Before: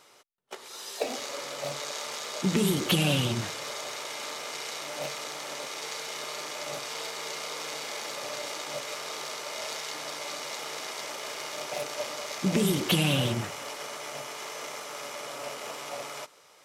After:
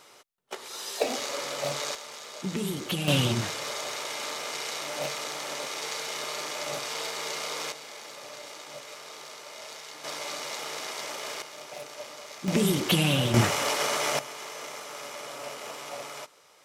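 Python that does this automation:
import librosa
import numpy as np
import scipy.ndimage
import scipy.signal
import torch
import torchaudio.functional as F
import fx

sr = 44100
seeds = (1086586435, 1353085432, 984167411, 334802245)

y = fx.gain(x, sr, db=fx.steps((0.0, 3.5), (1.95, -6.0), (3.08, 2.5), (7.72, -7.0), (10.04, 1.0), (11.42, -7.0), (12.48, 1.0), (13.34, 11.0), (14.19, -1.0)))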